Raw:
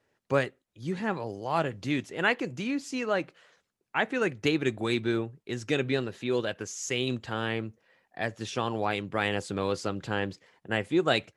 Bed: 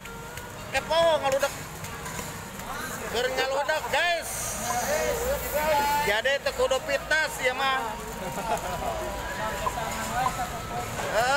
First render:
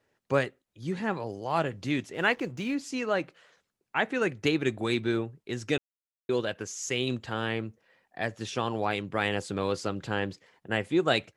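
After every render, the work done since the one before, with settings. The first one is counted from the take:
0:02.14–0:02.75: slack as between gear wheels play −48 dBFS
0:05.78–0:06.29: silence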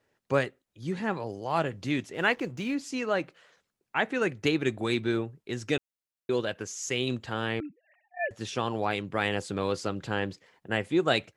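0:07.60–0:08.31: three sine waves on the formant tracks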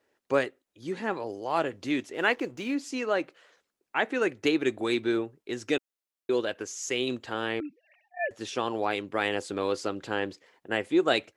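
low shelf with overshoot 220 Hz −8 dB, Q 1.5
0:07.66–0:08.09: gain on a spectral selection 2,100–6,200 Hz +9 dB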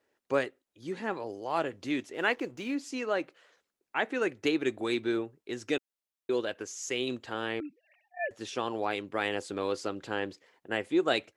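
level −3 dB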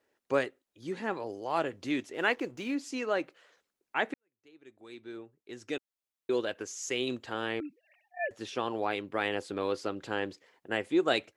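0:04.14–0:06.30: fade in quadratic
0:08.28–0:10.01: dynamic equaliser 7,400 Hz, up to −6 dB, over −58 dBFS, Q 1.2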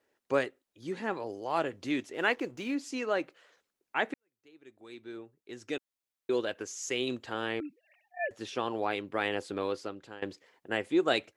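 0:09.58–0:10.22: fade out, to −18 dB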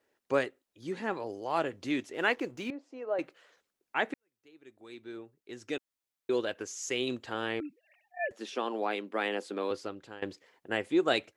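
0:02.70–0:03.19: resonant band-pass 610 Hz, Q 1.9
0:08.32–0:09.71: elliptic high-pass filter 200 Hz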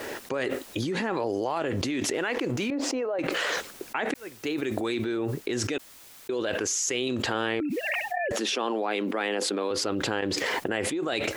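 brickwall limiter −24 dBFS, peak gain reduction 11.5 dB
envelope flattener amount 100%

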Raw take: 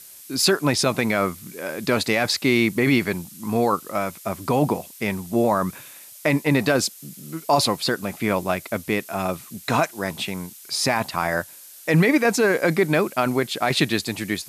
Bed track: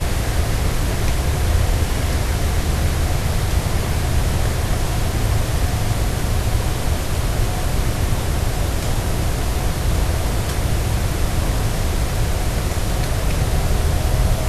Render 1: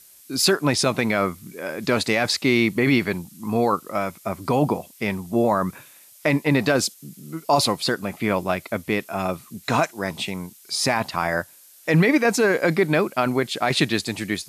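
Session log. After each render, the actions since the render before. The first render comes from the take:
noise reduction from a noise print 6 dB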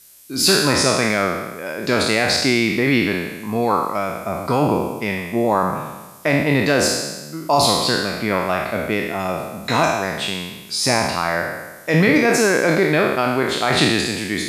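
peak hold with a decay on every bin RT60 1.17 s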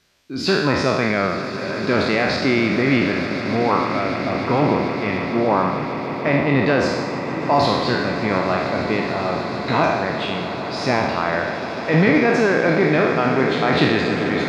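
high-frequency loss of the air 220 metres
echo that builds up and dies away 148 ms, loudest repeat 8, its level −16 dB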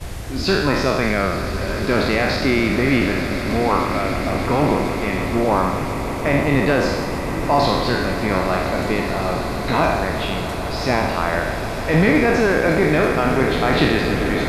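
mix in bed track −10 dB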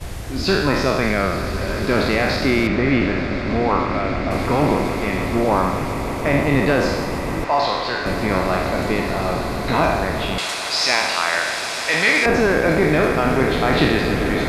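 0:02.67–0:04.31: high-frequency loss of the air 130 metres
0:07.44–0:08.06: three-way crossover with the lows and the highs turned down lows −13 dB, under 480 Hz, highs −15 dB, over 6,500 Hz
0:10.38–0:12.26: meter weighting curve ITU-R 468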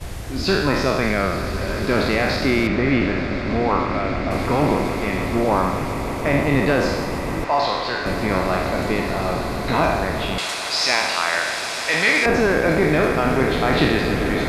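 level −1 dB

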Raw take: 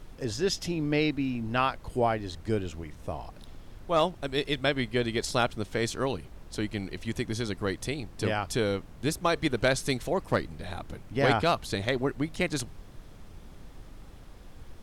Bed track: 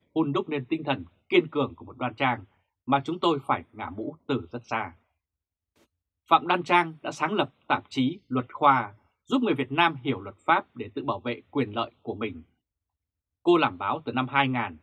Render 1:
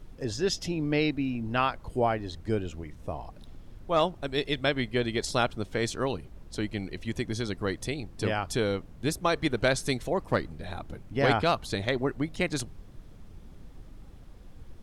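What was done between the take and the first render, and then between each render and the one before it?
broadband denoise 6 dB, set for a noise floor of −49 dBFS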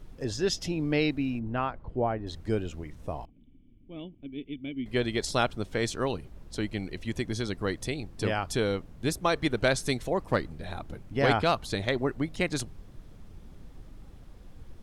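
0:01.39–0:02.27: head-to-tape spacing loss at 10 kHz 40 dB
0:03.25–0:04.86: formant resonators in series i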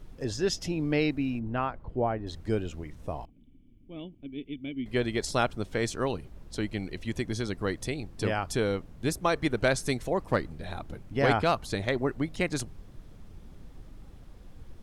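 dynamic equaliser 3,600 Hz, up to −4 dB, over −44 dBFS, Q 2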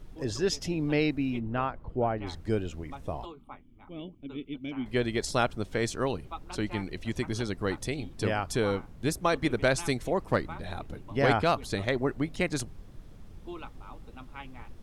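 mix in bed track −21.5 dB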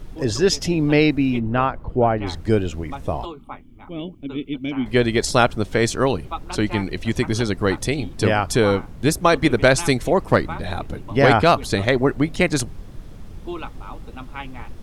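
level +10.5 dB
brickwall limiter −3 dBFS, peak gain reduction 2 dB

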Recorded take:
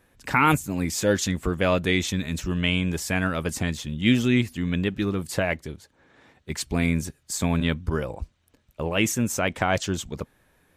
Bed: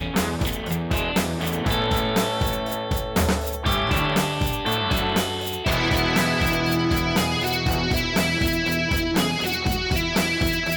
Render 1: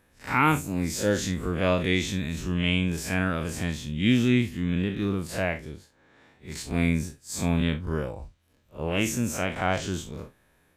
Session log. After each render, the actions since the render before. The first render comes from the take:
spectrum smeared in time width 94 ms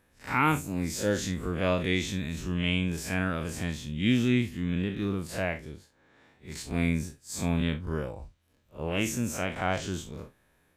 level −3 dB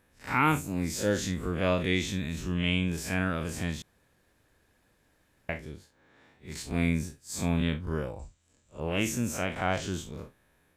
0:03.82–0:05.49: fill with room tone
0:08.19–0:08.80: low-pass with resonance 7,500 Hz, resonance Q 8.2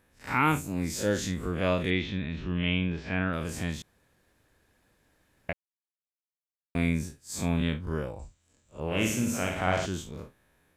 0:01.90–0:03.33: low-pass filter 3,700 Hz 24 dB per octave
0:05.53–0:06.75: silence
0:08.86–0:09.86: flutter between parallel walls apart 9.4 metres, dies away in 0.64 s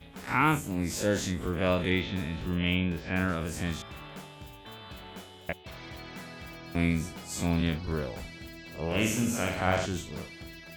mix in bed −22.5 dB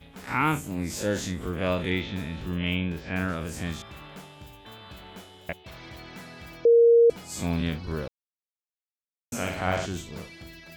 0:06.65–0:07.10: beep over 467 Hz −13 dBFS
0:08.08–0:09.32: silence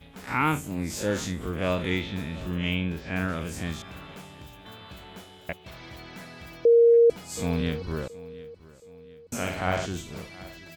repeating echo 723 ms, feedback 48%, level −20 dB

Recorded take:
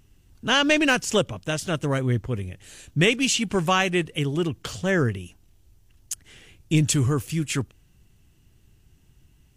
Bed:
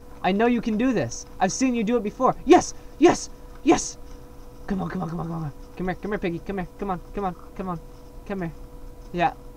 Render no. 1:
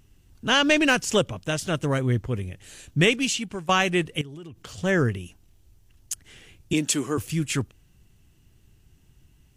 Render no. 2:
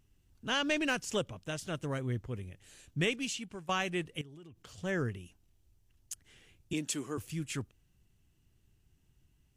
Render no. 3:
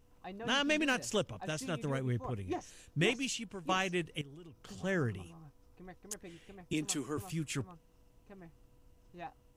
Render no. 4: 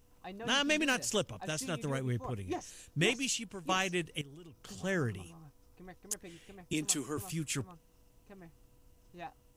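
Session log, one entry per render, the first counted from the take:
0:03.08–0:03.69: fade out, to −17 dB; 0:04.21–0:04.78: downward compressor 10 to 1, threshold −37 dBFS; 0:06.73–0:07.18: high-pass filter 220 Hz 24 dB per octave
level −11.5 dB
mix in bed −24 dB
high-shelf EQ 4,400 Hz +7.5 dB

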